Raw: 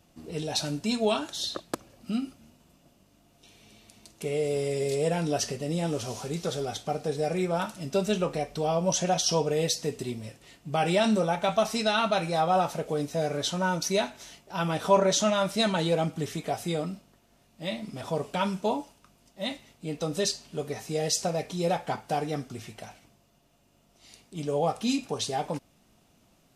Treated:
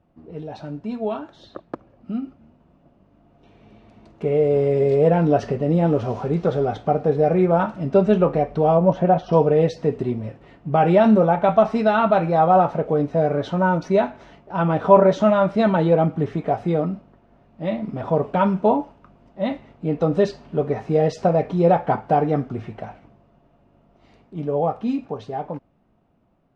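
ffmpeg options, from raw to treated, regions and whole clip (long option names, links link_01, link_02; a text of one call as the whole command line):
ffmpeg -i in.wav -filter_complex "[0:a]asettb=1/sr,asplit=3[link_01][link_02][link_03];[link_01]atrim=end=8.774[link_04];[link_02]atrim=start=8.77:end=9.33,asetpts=PTS-STARTPTS,afade=type=in:duration=0.004:curve=qsin,afade=type=out:start_time=0.556:duration=0.004:curve=qsin,lowpass=frequency=3900:poles=1,aemphasis=mode=reproduction:type=75kf,acrusher=bits=8:mode=log:mix=0:aa=0.000001[link_05];[link_03]atrim=start=9.326[link_06];[link_04][link_05]acrossfade=duration=0.004:curve1=hsin:curve2=qsin[link_07];[link_07][link_06]acrossfade=duration=0.004:curve1=qsin:curve2=hsin,lowpass=1300,dynaudnorm=framelen=720:gausssize=9:maxgain=12dB" out.wav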